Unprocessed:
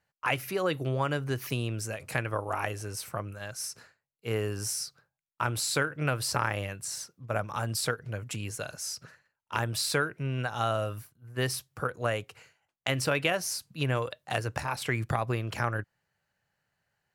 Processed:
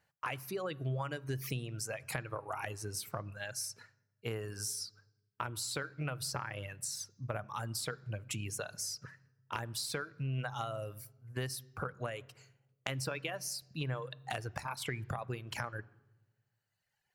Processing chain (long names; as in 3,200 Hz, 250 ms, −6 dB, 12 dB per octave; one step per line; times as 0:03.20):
reverb reduction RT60 1.5 s
downward compressor 6 to 1, threshold −38 dBFS, peak gain reduction 14.5 dB
on a send: convolution reverb RT60 1.1 s, pre-delay 3 ms, DRR 20 dB
on the sum: level +2 dB